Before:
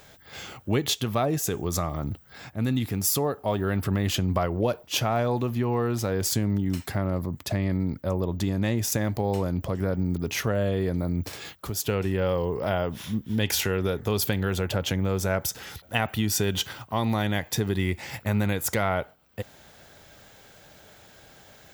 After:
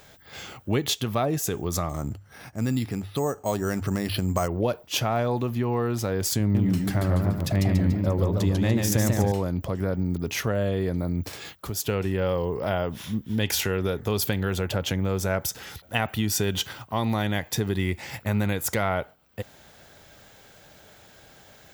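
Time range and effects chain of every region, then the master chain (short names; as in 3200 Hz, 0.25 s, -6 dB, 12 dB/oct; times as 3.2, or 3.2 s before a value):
1.89–4.48 notches 50/100 Hz + careless resampling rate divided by 6×, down filtered, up hold
6.4–9.32 low shelf 150 Hz +5 dB + warbling echo 0.144 s, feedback 50%, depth 185 cents, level -3.5 dB
whole clip: dry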